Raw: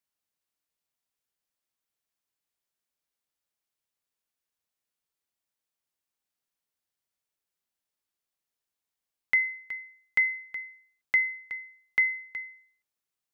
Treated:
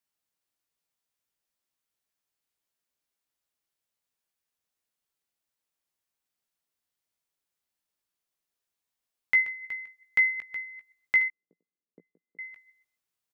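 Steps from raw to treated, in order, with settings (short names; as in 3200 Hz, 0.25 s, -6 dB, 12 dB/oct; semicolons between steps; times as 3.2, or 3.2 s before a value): reverse delay 0.127 s, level -14 dB; 11.28–12.39 Chebyshev band-pass 170–470 Hz, order 3; doubler 17 ms -7 dB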